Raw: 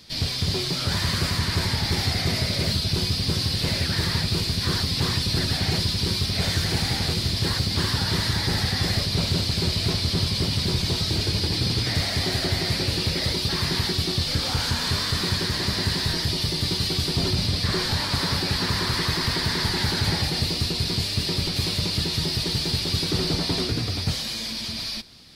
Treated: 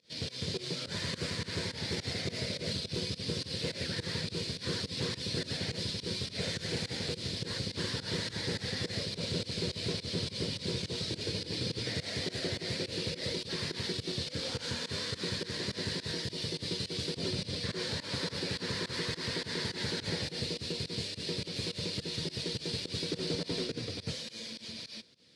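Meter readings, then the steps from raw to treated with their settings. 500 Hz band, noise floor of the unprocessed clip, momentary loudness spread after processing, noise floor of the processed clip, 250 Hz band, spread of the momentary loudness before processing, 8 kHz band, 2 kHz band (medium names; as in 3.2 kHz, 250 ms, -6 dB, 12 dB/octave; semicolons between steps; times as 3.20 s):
-6.0 dB, -30 dBFS, 2 LU, -50 dBFS, -10.0 dB, 1 LU, -11.0 dB, -10.5 dB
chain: Chebyshev shaper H 7 -27 dB, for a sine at -13.5 dBFS; volume shaper 105 bpm, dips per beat 2, -22 dB, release 115 ms; cabinet simulation 130–8900 Hz, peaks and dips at 490 Hz +10 dB, 790 Hz -9 dB, 1.2 kHz -7 dB, 4.9 kHz -3 dB; trim -8.5 dB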